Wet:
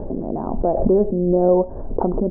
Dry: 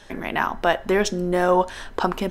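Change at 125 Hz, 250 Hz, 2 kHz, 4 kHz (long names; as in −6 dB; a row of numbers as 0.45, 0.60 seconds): +6.5 dB, +6.0 dB, below −30 dB, below −40 dB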